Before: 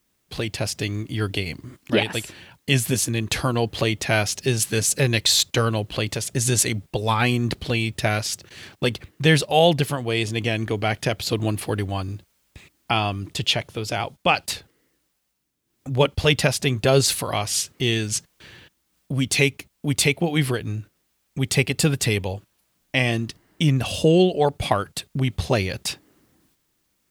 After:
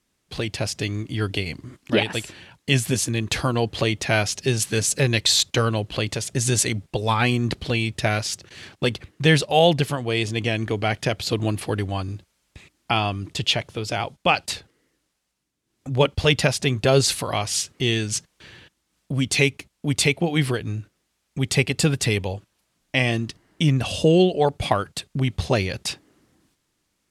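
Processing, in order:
low-pass filter 9,900 Hz 12 dB per octave

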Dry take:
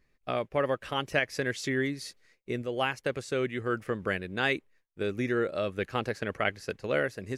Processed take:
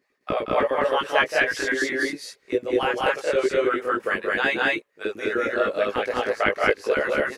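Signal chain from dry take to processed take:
auto-filter high-pass saw up 9.9 Hz 260–1,600 Hz
multi-voice chorus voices 4, 0.4 Hz, delay 19 ms, depth 1.3 ms
0:02.07–0:02.74: low-shelf EQ 330 Hz +7.5 dB
loudspeakers that aren't time-aligned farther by 61 metres −8 dB, 72 metres 0 dB
level +5.5 dB

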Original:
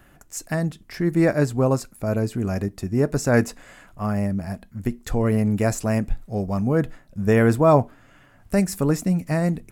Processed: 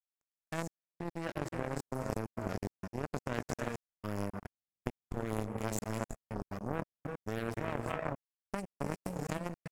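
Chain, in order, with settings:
reverb whose tail is shaped and stops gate 380 ms rising, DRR 3.5 dB
output level in coarse steps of 24 dB
power curve on the samples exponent 3
level −1.5 dB

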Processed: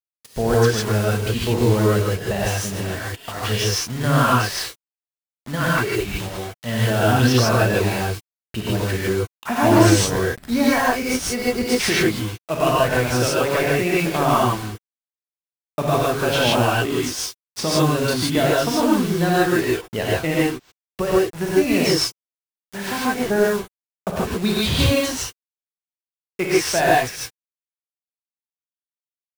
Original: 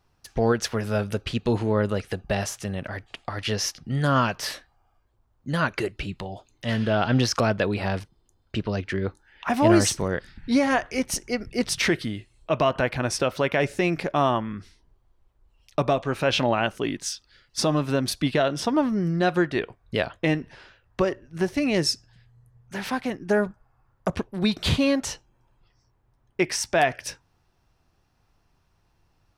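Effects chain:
variable-slope delta modulation 64 kbit/s
bit reduction 6 bits
reverb whose tail is shaped and stops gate 180 ms rising, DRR −6 dB
level −1 dB

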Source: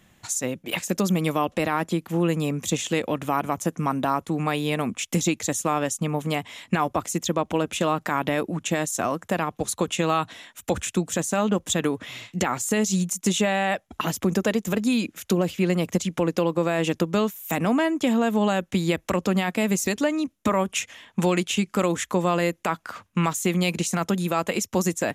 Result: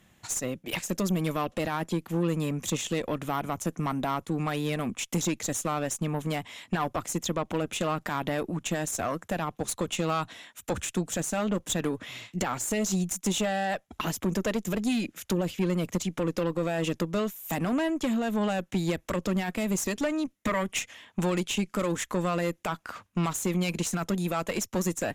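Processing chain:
tube saturation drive 19 dB, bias 0.45
0:20.35–0:20.78: parametric band 2,000 Hz +10 dB 0.27 octaves
level −1.5 dB

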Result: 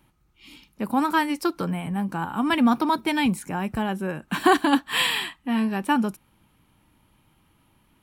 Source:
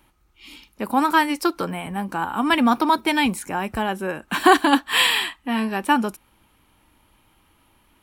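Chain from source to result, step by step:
parametric band 150 Hz +10.5 dB 1.3 octaves
level −5 dB

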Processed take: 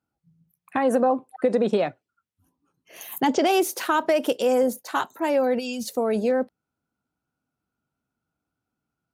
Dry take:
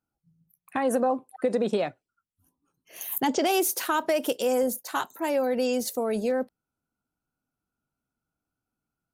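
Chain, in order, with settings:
low-pass filter 3,900 Hz 6 dB per octave
gain on a spectral selection 0:05.59–0:05.88, 240–2,300 Hz −15 dB
high-pass filter 59 Hz
level +4 dB

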